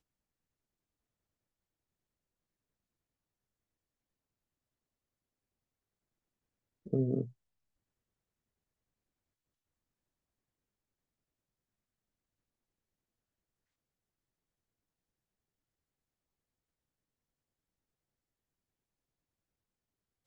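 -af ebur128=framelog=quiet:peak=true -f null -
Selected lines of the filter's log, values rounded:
Integrated loudness:
  I:         -34.8 LUFS
  Threshold: -45.8 LUFS
Loudness range:
  LRA:         4.4 LU
  Threshold: -61.6 LUFS
  LRA low:   -45.4 LUFS
  LRA high:  -41.1 LUFS
True peak:
  Peak:      -16.8 dBFS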